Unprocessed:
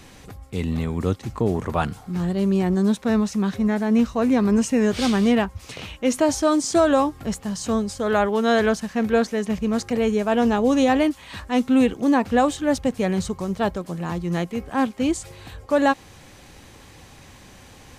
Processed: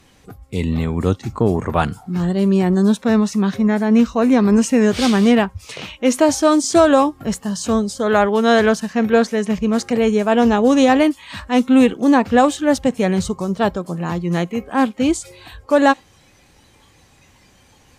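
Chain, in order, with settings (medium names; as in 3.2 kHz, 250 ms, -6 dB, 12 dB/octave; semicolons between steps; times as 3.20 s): spectral noise reduction 11 dB; Chebyshev shaper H 3 -27 dB, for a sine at -7.5 dBFS; trim +6 dB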